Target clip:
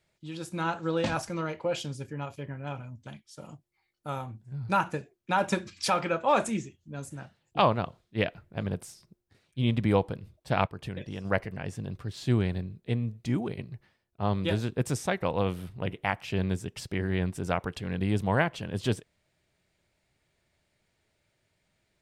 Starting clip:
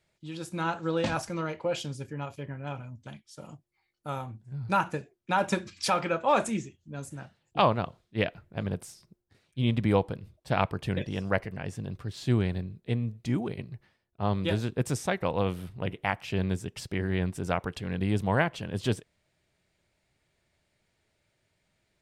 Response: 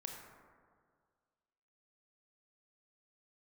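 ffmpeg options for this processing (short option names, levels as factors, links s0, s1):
-filter_complex "[0:a]asplit=3[s0][s1][s2];[s0]afade=t=out:st=10.66:d=0.02[s3];[s1]acompressor=threshold=0.0224:ratio=6,afade=t=in:st=10.66:d=0.02,afade=t=out:st=11.24:d=0.02[s4];[s2]afade=t=in:st=11.24:d=0.02[s5];[s3][s4][s5]amix=inputs=3:normalize=0"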